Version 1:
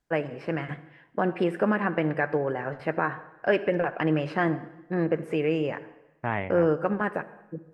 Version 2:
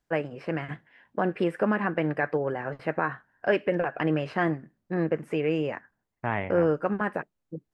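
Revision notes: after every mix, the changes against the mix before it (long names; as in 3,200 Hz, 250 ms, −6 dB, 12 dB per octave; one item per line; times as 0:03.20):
reverb: off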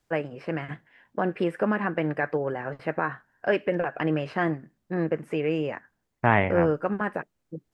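second voice +8.5 dB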